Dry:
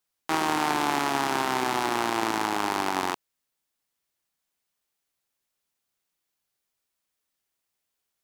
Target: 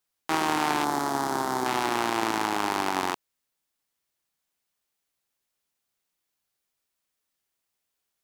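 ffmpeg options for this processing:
-filter_complex "[0:a]asettb=1/sr,asplit=3[a][b][c];[a]atrim=end=0.844[d];[b]atrim=start=0.84:end=1.66,asetpts=PTS-STARTPTS,afade=t=in:d=0.004:c=qsin,afade=t=out:st=0.816:d=0.004:c=qsin,equalizer=f=2.6k:w=1.7:g=-15[e];[c]atrim=start=1.656[f];[d][e]acrossfade=d=0.004:c1=hsin:c2=qsin[g];[g][f]acrossfade=d=0.004:c1=qsin:c2=hsin"

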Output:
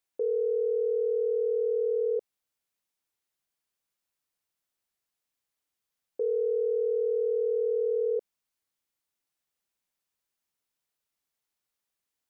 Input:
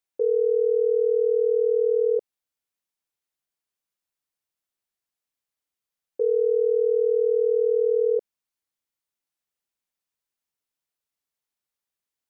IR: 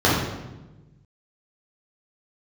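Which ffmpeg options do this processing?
-af "alimiter=level_in=0.5dB:limit=-24dB:level=0:latency=1:release=22,volume=-0.5dB,volume=2dB"

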